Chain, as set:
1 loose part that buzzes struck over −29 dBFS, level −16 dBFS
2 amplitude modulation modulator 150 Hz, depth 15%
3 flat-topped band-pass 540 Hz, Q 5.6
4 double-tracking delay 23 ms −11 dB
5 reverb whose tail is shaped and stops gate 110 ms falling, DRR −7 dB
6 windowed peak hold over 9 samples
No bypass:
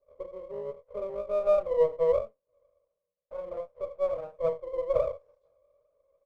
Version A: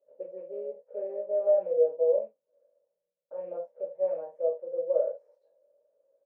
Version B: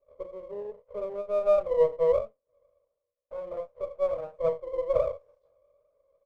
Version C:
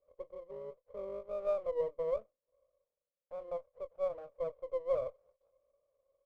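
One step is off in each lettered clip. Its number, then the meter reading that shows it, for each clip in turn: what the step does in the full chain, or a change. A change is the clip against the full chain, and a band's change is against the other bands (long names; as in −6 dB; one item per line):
6, distortion level −15 dB
2, change in integrated loudness +1.0 LU
5, change in momentary loudness spread −4 LU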